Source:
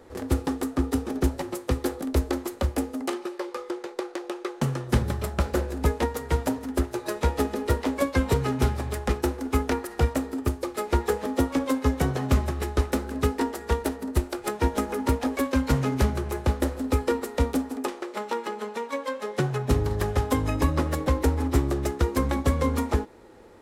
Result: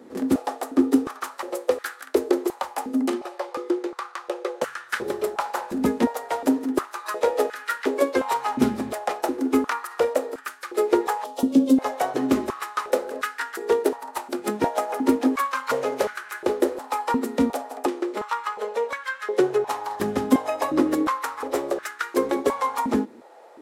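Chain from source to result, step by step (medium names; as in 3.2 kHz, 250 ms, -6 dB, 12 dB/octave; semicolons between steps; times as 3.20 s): 11.24–11.78 s: high-order bell 1.4 kHz -14 dB; step-sequenced high-pass 2.8 Hz 230–1500 Hz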